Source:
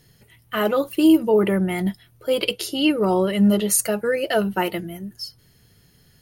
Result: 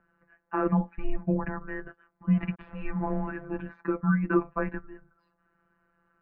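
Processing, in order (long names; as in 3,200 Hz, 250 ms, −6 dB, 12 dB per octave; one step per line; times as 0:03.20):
0:02.37–0:03.45: hold until the input has moved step −34.5 dBFS
phases set to zero 167 Hz
single-sideband voice off tune −320 Hz 440–2,000 Hz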